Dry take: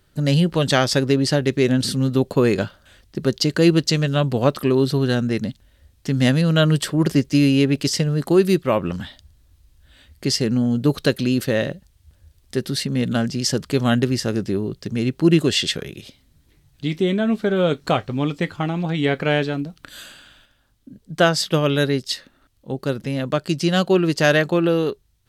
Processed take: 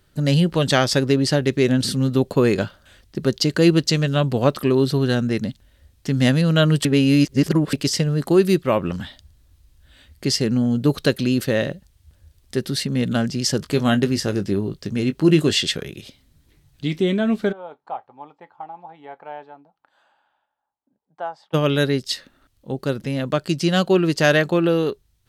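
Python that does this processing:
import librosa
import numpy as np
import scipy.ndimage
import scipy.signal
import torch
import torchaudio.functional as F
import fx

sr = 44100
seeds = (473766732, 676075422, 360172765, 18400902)

y = fx.doubler(x, sr, ms=20.0, db=-10, at=(13.57, 15.59))
y = fx.bandpass_q(y, sr, hz=850.0, q=7.7, at=(17.51, 21.53), fade=0.02)
y = fx.edit(y, sr, fx.reverse_span(start_s=6.85, length_s=0.88), tone=tone)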